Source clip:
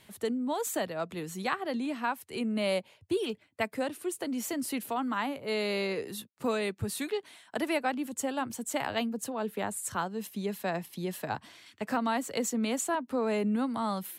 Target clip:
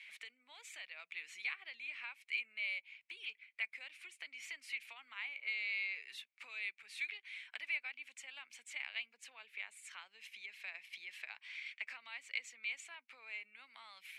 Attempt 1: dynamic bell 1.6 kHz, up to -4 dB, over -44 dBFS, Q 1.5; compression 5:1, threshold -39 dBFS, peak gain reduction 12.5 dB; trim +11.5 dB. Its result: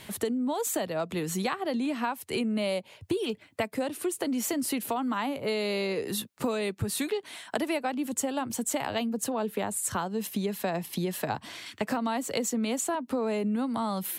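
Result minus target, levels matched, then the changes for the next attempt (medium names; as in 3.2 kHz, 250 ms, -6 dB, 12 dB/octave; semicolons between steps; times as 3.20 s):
2 kHz band -11.0 dB
add after compression: ladder band-pass 2.4 kHz, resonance 80%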